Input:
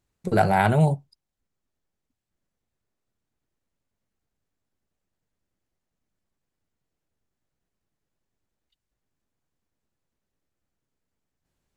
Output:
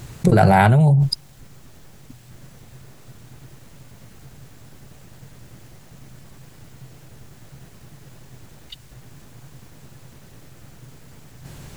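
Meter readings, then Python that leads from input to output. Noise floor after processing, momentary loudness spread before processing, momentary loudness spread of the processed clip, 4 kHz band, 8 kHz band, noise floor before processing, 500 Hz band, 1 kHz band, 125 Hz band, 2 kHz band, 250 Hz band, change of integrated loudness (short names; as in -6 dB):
-46 dBFS, 7 LU, 9 LU, +12.0 dB, n/a, -84 dBFS, +4.0 dB, +5.0 dB, +9.0 dB, +5.0 dB, +7.5 dB, +5.5 dB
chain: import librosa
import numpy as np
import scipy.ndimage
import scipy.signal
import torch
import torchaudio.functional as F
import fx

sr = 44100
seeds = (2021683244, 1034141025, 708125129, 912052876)

y = fx.peak_eq(x, sr, hz=130.0, db=14.0, octaves=0.46)
y = fx.env_flatten(y, sr, amount_pct=100)
y = y * librosa.db_to_amplitude(-3.5)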